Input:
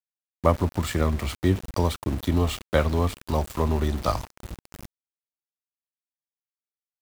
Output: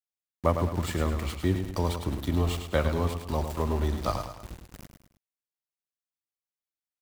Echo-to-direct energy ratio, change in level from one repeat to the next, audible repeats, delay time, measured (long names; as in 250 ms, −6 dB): −6.5 dB, −7.5 dB, 3, 105 ms